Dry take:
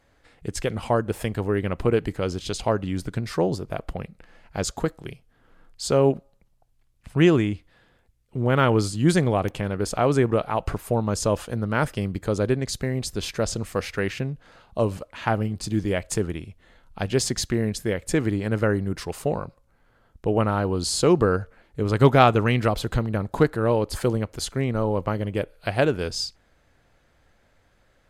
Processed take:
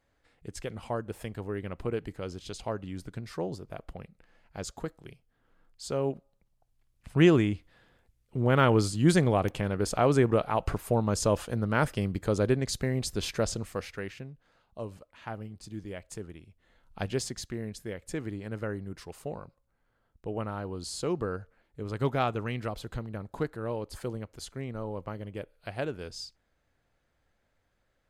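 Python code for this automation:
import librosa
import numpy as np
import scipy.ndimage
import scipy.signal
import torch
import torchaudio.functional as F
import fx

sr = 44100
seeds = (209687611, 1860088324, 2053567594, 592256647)

y = fx.gain(x, sr, db=fx.line((6.12, -11.0), (7.17, -3.0), (13.38, -3.0), (14.31, -15.5), (16.42, -15.5), (17.02, -5.5), (17.35, -12.5)))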